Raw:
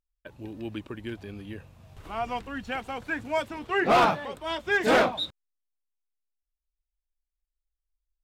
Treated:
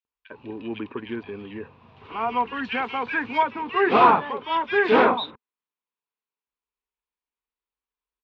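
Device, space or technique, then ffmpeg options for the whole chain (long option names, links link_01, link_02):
overdrive pedal into a guitar cabinet: -filter_complex "[0:a]asplit=2[link_01][link_02];[link_02]highpass=frequency=720:poles=1,volume=7dB,asoftclip=type=tanh:threshold=-15dB[link_03];[link_01][link_03]amix=inputs=2:normalize=0,lowpass=frequency=2500:poles=1,volume=-6dB,highpass=94,equalizer=frequency=240:width_type=q:width=4:gain=7,equalizer=frequency=430:width_type=q:width=4:gain=9,equalizer=frequency=610:width_type=q:width=4:gain=-7,equalizer=frequency=1000:width_type=q:width=4:gain=9,equalizer=frequency=2500:width_type=q:width=4:gain=5,lowpass=frequency=4000:width=0.5412,lowpass=frequency=4000:width=1.3066,asettb=1/sr,asplit=3[link_04][link_05][link_06];[link_04]atrim=end=2.474[link_07];[link_05]atrim=start=2.47:end=3.38,asetpts=PTS-STARTPTS,afade=type=in:duration=0.004:curve=qsin,afade=type=out:start_time=0.906:duration=0.004:curve=qsin,highshelf=frequency=2300:gain=8.5[link_08];[link_06]atrim=start=3.376[link_09];[link_07][link_08]acrossfade=duration=0.004:curve1=hsin:curve2=qsin[link_10];[link_10][link_09]acrossfade=duration=0.004:curve1=qsin:curve2=hsin,acrossover=split=2100[link_11][link_12];[link_11]adelay=50[link_13];[link_13][link_12]amix=inputs=2:normalize=0,volume=3dB"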